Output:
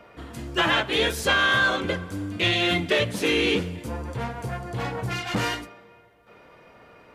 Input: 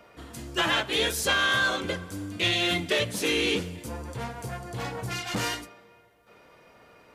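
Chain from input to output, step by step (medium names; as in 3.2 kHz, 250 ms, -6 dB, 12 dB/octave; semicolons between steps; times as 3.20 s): tone controls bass +1 dB, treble -8 dB; trim +4 dB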